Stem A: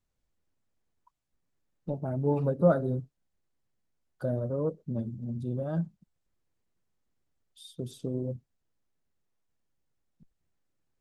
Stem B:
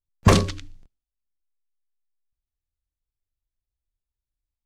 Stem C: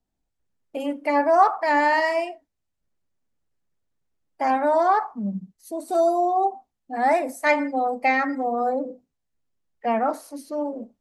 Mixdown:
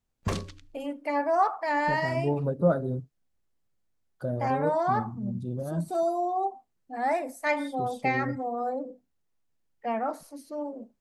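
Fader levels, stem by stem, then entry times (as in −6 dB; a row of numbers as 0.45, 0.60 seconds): −0.5, −14.5, −7.0 decibels; 0.00, 0.00, 0.00 seconds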